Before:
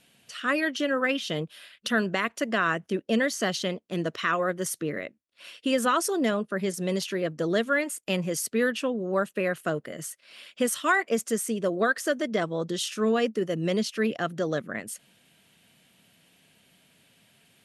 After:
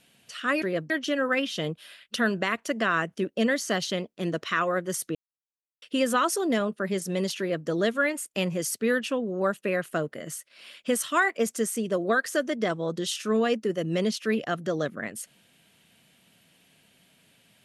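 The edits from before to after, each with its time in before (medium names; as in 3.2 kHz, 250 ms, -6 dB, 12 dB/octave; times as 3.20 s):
4.87–5.54 s: mute
7.11–7.39 s: copy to 0.62 s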